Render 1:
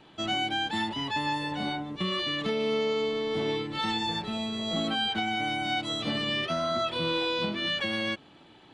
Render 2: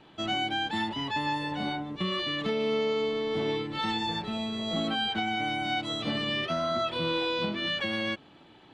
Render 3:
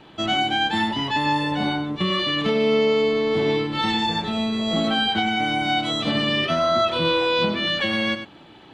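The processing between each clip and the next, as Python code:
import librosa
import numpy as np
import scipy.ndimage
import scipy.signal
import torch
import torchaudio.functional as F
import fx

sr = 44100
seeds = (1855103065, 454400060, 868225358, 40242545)

y1 = fx.high_shelf(x, sr, hz=6100.0, db=-7.0)
y2 = y1 + 10.0 ** (-10.0 / 20.0) * np.pad(y1, (int(95 * sr / 1000.0), 0))[:len(y1)]
y2 = y2 * 10.0 ** (7.5 / 20.0)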